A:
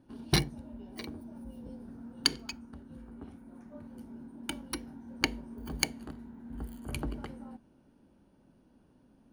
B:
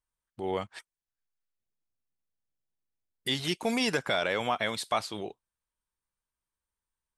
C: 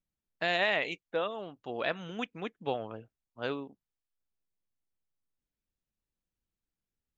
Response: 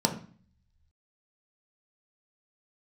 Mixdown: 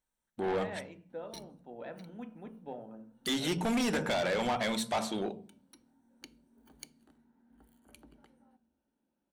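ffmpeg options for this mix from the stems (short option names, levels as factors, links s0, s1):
-filter_complex "[0:a]lowshelf=f=480:g=-12,acrossover=split=450|3000[s0][s1][s2];[s1]acompressor=threshold=0.00398:ratio=6[s3];[s0][s3][s2]amix=inputs=3:normalize=0,adelay=1000,volume=0.178,asplit=2[s4][s5];[s5]volume=0.112[s6];[1:a]volume=1.06,asplit=3[s7][s8][s9];[s8]volume=0.178[s10];[2:a]equalizer=f=4400:t=o:w=1.4:g=-10.5,volume=0.112,asplit=2[s11][s12];[s12]volume=0.447[s13];[s9]apad=whole_len=455547[s14];[s4][s14]sidechaincompress=threshold=0.0158:ratio=8:attack=16:release=1310[s15];[3:a]atrim=start_sample=2205[s16];[s6][s10][s13]amix=inputs=3:normalize=0[s17];[s17][s16]afir=irnorm=-1:irlink=0[s18];[s15][s7][s11][s18]amix=inputs=4:normalize=0,bandreject=f=45.18:t=h:w=4,bandreject=f=90.36:t=h:w=4,bandreject=f=135.54:t=h:w=4,bandreject=f=180.72:t=h:w=4,bandreject=f=225.9:t=h:w=4,asoftclip=type=tanh:threshold=0.0473"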